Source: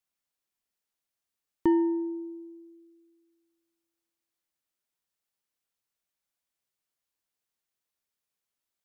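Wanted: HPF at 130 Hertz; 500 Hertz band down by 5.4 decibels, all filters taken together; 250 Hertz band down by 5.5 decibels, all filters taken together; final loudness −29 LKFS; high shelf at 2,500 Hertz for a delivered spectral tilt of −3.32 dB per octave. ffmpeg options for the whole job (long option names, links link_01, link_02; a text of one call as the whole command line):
ffmpeg -i in.wav -af "highpass=130,equalizer=frequency=250:width_type=o:gain=-6,equalizer=frequency=500:width_type=o:gain=-4,highshelf=frequency=2500:gain=-8.5,volume=4.5dB" out.wav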